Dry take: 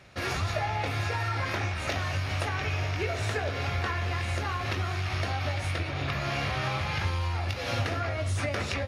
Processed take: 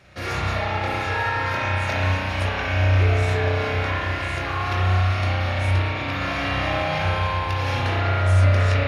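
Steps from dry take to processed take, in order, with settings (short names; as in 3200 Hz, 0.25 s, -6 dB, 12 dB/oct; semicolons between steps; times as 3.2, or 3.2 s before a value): spring tank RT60 3 s, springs 32 ms, chirp 35 ms, DRR -6.5 dB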